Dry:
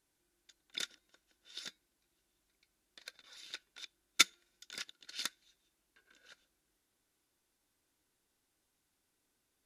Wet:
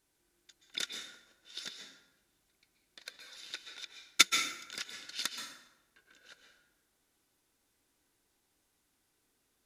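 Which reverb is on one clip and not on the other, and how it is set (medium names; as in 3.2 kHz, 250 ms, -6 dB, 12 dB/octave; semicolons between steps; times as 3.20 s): plate-style reverb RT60 0.95 s, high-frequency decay 0.65×, pre-delay 115 ms, DRR 4 dB; trim +3 dB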